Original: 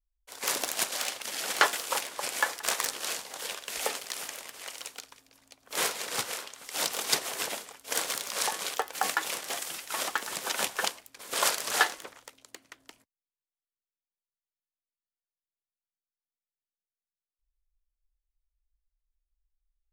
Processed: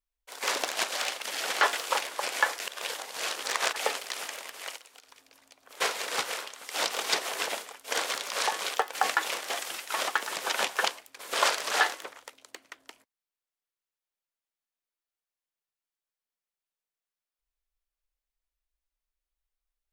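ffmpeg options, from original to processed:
ffmpeg -i in.wav -filter_complex "[0:a]asplit=3[link_01][link_02][link_03];[link_01]afade=type=out:start_time=4.76:duration=0.02[link_04];[link_02]acompressor=threshold=-50dB:ratio=8:attack=3.2:release=140:knee=1:detection=peak,afade=type=in:start_time=4.76:duration=0.02,afade=type=out:start_time=5.8:duration=0.02[link_05];[link_03]afade=type=in:start_time=5.8:duration=0.02[link_06];[link_04][link_05][link_06]amix=inputs=3:normalize=0,asplit=3[link_07][link_08][link_09];[link_07]atrim=end=2.602[link_10];[link_08]atrim=start=2.598:end=3.762,asetpts=PTS-STARTPTS,areverse[link_11];[link_09]atrim=start=3.758[link_12];[link_10][link_11]acrossfade=duration=0.004:curve1=hsin:curve2=hsin[link_13];[link_13][link_12]acrossfade=duration=0.004:curve1=hsin:curve2=hsin,acrossover=split=7200[link_14][link_15];[link_15]acompressor=threshold=-40dB:ratio=4:attack=1:release=60[link_16];[link_14][link_16]amix=inputs=2:normalize=0,bass=frequency=250:gain=-13,treble=frequency=4000:gain=-4,alimiter=level_in=12dB:limit=-1dB:release=50:level=0:latency=1,volume=-8dB" out.wav

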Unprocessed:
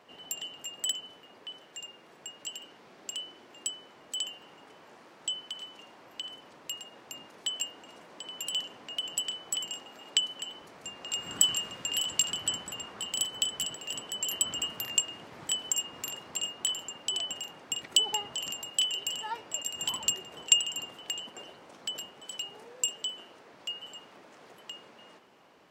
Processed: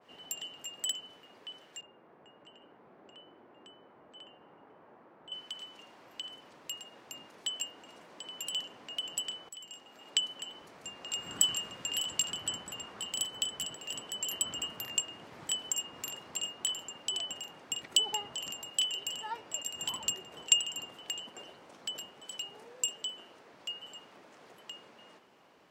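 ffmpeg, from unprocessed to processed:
ffmpeg -i in.wav -filter_complex "[0:a]asettb=1/sr,asplit=3[link_01][link_02][link_03];[link_01]atrim=end=1.814[link_04];[link_02]atrim=start=1.81:end=5.32,asetpts=PTS-STARTPTS,afade=type=in:duration=0.004:curve=qsin,afade=type=out:start_time=3.506:duration=0.004:curve=qsin,lowpass=1300[link_05];[link_03]atrim=start=5.316[link_06];[link_04][link_05]acrossfade=duration=0.004:curve1=hsin:curve2=qsin[link_07];[link_07][link_06]acrossfade=duration=0.004:curve1=qsin:curve2=hsin,asplit=2[link_08][link_09];[link_08]atrim=end=9.49,asetpts=PTS-STARTPTS,afade=type=out:start_time=9.486:duration=0.004:curve=hsin:silence=0.16788[link_10];[link_09]atrim=start=9.49,asetpts=PTS-STARTPTS,afade=type=in:duration=0.73:silence=0.16788[link_11];[link_10][link_11]concat=n=2:v=0:a=1,adynamicequalizer=threshold=0.00891:dfrequency=2100:dqfactor=0.7:tfrequency=2100:tqfactor=0.7:attack=5:release=100:ratio=0.375:range=1.5:mode=cutabove:tftype=highshelf,volume=-2.5dB" out.wav

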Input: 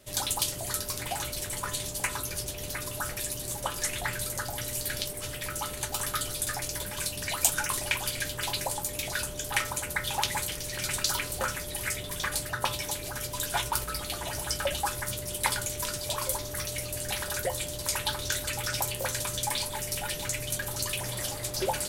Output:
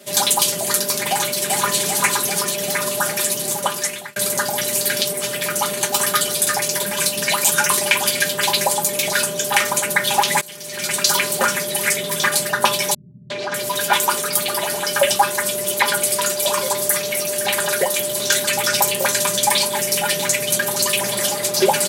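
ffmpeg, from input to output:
ffmpeg -i in.wav -filter_complex "[0:a]asplit=2[link_01][link_02];[link_02]afade=type=in:start_time=1.09:duration=0.01,afade=type=out:start_time=1.77:duration=0.01,aecho=0:1:390|780|1170|1560|1950|2340|2730|3120|3510|3900:0.630957|0.410122|0.266579|0.173277|0.11263|0.0732094|0.0475861|0.030931|0.0201051|0.0130683[link_03];[link_01][link_03]amix=inputs=2:normalize=0,asettb=1/sr,asplit=3[link_04][link_05][link_06];[link_04]atrim=end=12.944[link_07];[link_05]atrim=start=12.94:end=18.2,asetpts=PTS-STARTPTS,afade=type=in:duration=0.004:curve=qsin,afade=type=out:start_time=5.256:duration=0.004:curve=qsin,acrossover=split=170|5200[link_08][link_09][link_10];[link_09]adelay=360[link_11];[link_10]adelay=600[link_12];[link_08][link_11][link_12]amix=inputs=3:normalize=0,atrim=end_sample=231966[link_13];[link_06]atrim=start=18.196[link_14];[link_07][link_13]acrossfade=duration=0.004:curve1=hsin:curve2=qsin[link_15];[link_15][link_14]acrossfade=duration=0.004:curve1=qsin:curve2=hsin,asplit=3[link_16][link_17][link_18];[link_16]atrim=end=4.16,asetpts=PTS-STARTPTS,afade=type=out:start_time=3.32:duration=0.84:curve=qsin[link_19];[link_17]atrim=start=4.16:end=10.41,asetpts=PTS-STARTPTS,afade=type=in:duration=0.004:curve=hsin,afade=type=out:start_time=6.246:duration=0.004:curve=hsin:silence=0.0794328[link_20];[link_18]atrim=start=10.41,asetpts=PTS-STARTPTS,afade=type=in:duration=0.81:silence=0.0794328[link_21];[link_19][link_20][link_21]concat=n=3:v=0:a=1,highpass=frequency=150:width=0.5412,highpass=frequency=150:width=1.3066,aecho=1:1:5:0.71,alimiter=level_in=12.5dB:limit=-1dB:release=50:level=0:latency=1,volume=-1dB" out.wav

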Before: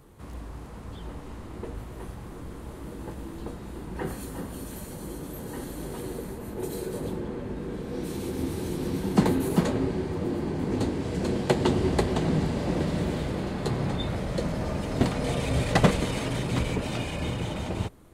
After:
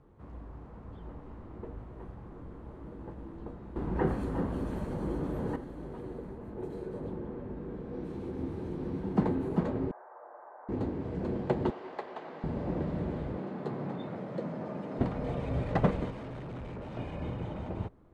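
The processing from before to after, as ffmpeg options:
ffmpeg -i in.wav -filter_complex "[0:a]asettb=1/sr,asplit=3[link_01][link_02][link_03];[link_01]atrim=end=9.914[link_04];[link_02]atrim=start=9.91:end=10.69,asetpts=PTS-STARTPTS,afade=type=in:duration=0.004:curve=qsin,afade=type=out:start_time=0.776:duration=0.004:curve=qsin,asuperpass=centerf=1000:order=8:qfactor=0.95[link_05];[link_03]atrim=start=10.686[link_06];[link_04][link_05]acrossfade=duration=0.004:curve1=hsin:curve2=qsin[link_07];[link_07][link_06]acrossfade=duration=0.004:curve1=qsin:curve2=hsin,asettb=1/sr,asplit=3[link_08][link_09][link_10];[link_08]atrim=end=11.704[link_11];[link_09]atrim=start=11.7:end=12.44,asetpts=PTS-STARTPTS,afade=type=in:duration=0.004:curve=qsin,afade=type=out:start_time=0.736:duration=0.004:curve=qsin,highpass=730,lowpass=5900[link_12];[link_10]atrim=start=12.436[link_13];[link_11][link_12]acrossfade=duration=0.004:curve1=hsin:curve2=qsin[link_14];[link_14][link_13]acrossfade=duration=0.004:curve1=qsin:curve2=hsin,asettb=1/sr,asplit=3[link_15][link_16][link_17];[link_15]atrim=end=13.374[link_18];[link_16]atrim=start=13.37:end=14.99,asetpts=PTS-STARTPTS,afade=type=in:duration=0.004:curve=qsin,afade=type=out:start_time=1.616:duration=0.004:curve=qsin,highpass=frequency=150:width=0.5412,highpass=frequency=150:width=1.3066[link_19];[link_17]atrim=start=14.986[link_20];[link_18][link_19]acrossfade=duration=0.004:curve1=hsin:curve2=qsin[link_21];[link_21][link_20]acrossfade=duration=0.004:curve1=qsin:curve2=hsin,asettb=1/sr,asplit=3[link_22][link_23][link_24];[link_22]atrim=end=16.104[link_25];[link_23]atrim=start=16.1:end=16.97,asetpts=PTS-STARTPTS,afade=type=in:duration=0.004:curve=qsin,afade=type=out:start_time=0.866:duration=0.004:curve=qsin,volume=32.5dB,asoftclip=hard,volume=-32.5dB[link_26];[link_24]atrim=start=16.966[link_27];[link_25][link_26]acrossfade=duration=0.004:curve1=hsin:curve2=qsin[link_28];[link_28][link_27]acrossfade=duration=0.004:curve1=qsin:curve2=hsin,asplit=3[link_29][link_30][link_31];[link_29]atrim=end=3.762[link_32];[link_30]atrim=start=3.758:end=5.562,asetpts=PTS-STARTPTS,volume=10dB[link_33];[link_31]atrim=start=5.558[link_34];[link_32][link_33]acrossfade=duration=0.004:curve1=hsin:curve2=hsin[link_35];[link_35][link_34]acrossfade=duration=0.004:curve1=hsin:curve2=hsin,lowpass=1200,aemphasis=mode=production:type=75kf,volume=-6dB" out.wav

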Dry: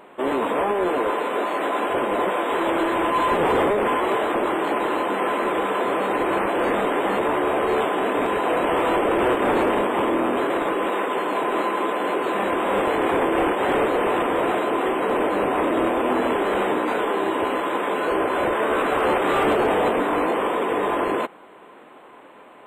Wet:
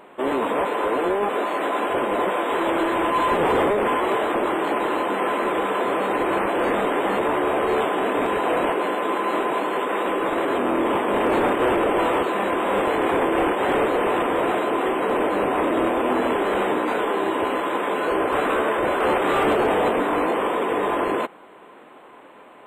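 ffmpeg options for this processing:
ffmpeg -i in.wav -filter_complex "[0:a]asplit=7[link_01][link_02][link_03][link_04][link_05][link_06][link_07];[link_01]atrim=end=0.652[link_08];[link_02]atrim=start=0.648:end=1.292,asetpts=PTS-STARTPTS,areverse[link_09];[link_03]atrim=start=1.288:end=8.722[link_10];[link_04]atrim=start=8.718:end=12.232,asetpts=PTS-STARTPTS,areverse[link_11];[link_05]atrim=start=12.228:end=18.322[link_12];[link_06]atrim=start=18.318:end=19.002,asetpts=PTS-STARTPTS,areverse[link_13];[link_07]atrim=start=18.998[link_14];[link_08][link_09]acrossfade=duration=0.004:curve1=hsin:curve2=hsin[link_15];[link_15][link_10]acrossfade=duration=0.004:curve1=hsin:curve2=hsin[link_16];[link_16][link_11]acrossfade=duration=0.004:curve1=hsin:curve2=hsin[link_17];[link_17][link_12]acrossfade=duration=0.004:curve1=hsin:curve2=hsin[link_18];[link_18][link_13]acrossfade=duration=0.004:curve1=hsin:curve2=hsin[link_19];[link_19][link_14]acrossfade=duration=0.004:curve1=hsin:curve2=hsin" out.wav

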